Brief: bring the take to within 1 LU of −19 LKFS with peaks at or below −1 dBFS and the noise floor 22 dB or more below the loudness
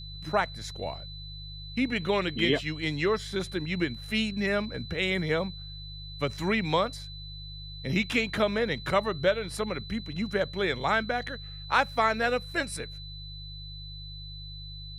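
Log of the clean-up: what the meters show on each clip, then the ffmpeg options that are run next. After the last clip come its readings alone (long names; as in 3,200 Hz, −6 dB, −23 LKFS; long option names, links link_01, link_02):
mains hum 50 Hz; hum harmonics up to 150 Hz; level of the hum −41 dBFS; interfering tone 4,000 Hz; level of the tone −43 dBFS; integrated loudness −29.0 LKFS; sample peak −9.5 dBFS; target loudness −19.0 LKFS
→ -af "bandreject=frequency=50:width_type=h:width=4,bandreject=frequency=100:width_type=h:width=4,bandreject=frequency=150:width_type=h:width=4"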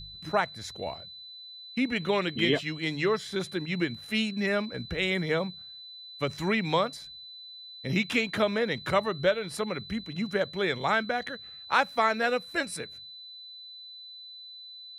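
mains hum none found; interfering tone 4,000 Hz; level of the tone −43 dBFS
→ -af "bandreject=frequency=4000:width=30"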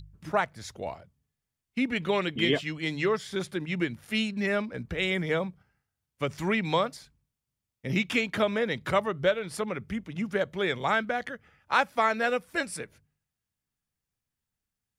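interfering tone none found; integrated loudness −29.0 LKFS; sample peak −10.0 dBFS; target loudness −19.0 LKFS
→ -af "volume=10dB,alimiter=limit=-1dB:level=0:latency=1"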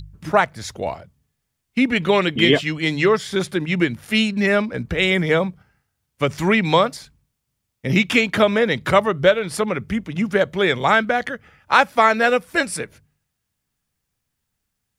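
integrated loudness −19.0 LKFS; sample peak −1.0 dBFS; background noise floor −77 dBFS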